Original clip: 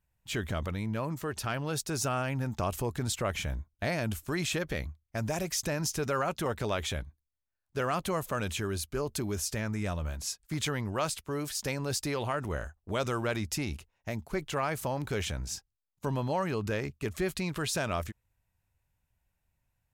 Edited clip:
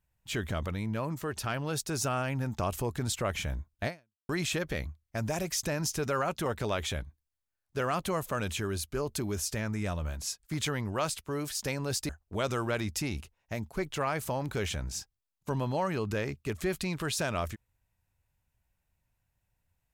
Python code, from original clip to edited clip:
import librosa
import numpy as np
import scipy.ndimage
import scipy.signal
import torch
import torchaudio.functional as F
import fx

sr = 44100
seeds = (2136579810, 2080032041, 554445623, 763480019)

y = fx.edit(x, sr, fx.fade_out_span(start_s=3.87, length_s=0.42, curve='exp'),
    fx.cut(start_s=12.09, length_s=0.56), tone=tone)